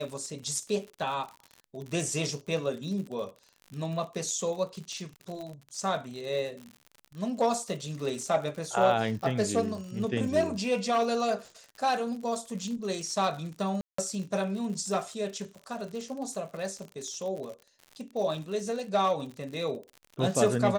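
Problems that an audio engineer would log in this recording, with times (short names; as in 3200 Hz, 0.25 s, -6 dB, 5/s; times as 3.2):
crackle 67/s -37 dBFS
5.41 pop
13.81–13.98 gap 0.174 s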